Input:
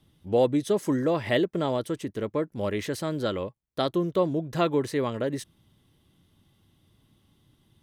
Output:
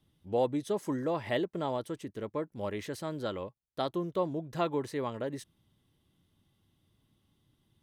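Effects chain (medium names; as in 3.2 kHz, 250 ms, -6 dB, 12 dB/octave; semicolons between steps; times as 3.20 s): dynamic bell 880 Hz, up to +6 dB, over -40 dBFS, Q 2; trim -8 dB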